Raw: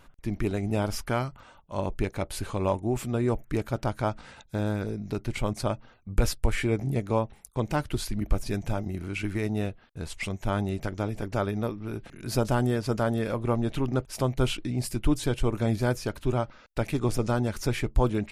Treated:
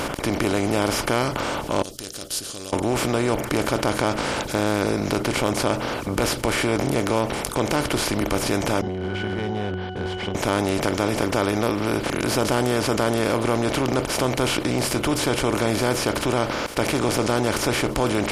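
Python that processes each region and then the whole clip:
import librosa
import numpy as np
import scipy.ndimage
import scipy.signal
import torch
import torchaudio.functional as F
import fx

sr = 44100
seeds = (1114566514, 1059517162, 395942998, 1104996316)

y = fx.chain(x, sr, fx.cheby2_highpass(hz=2400.0, order=4, stop_db=40),
    fx.upward_expand(threshold_db=-56.0, expansion=2.5), at=(1.82, 2.73))
y = fx.chain(y, sr, fx.octave_resonator(note='F#', decay_s=0.39),
    fx.over_compress(threshold_db=-44.0, ratio=-1.0),
    fx.lowpass_res(hz=3100.0, q=2.1), at=(8.81, 10.35))
y = fx.bin_compress(y, sr, power=0.4)
y = fx.highpass(y, sr, hz=210.0, slope=6)
y = fx.env_flatten(y, sr, amount_pct=50)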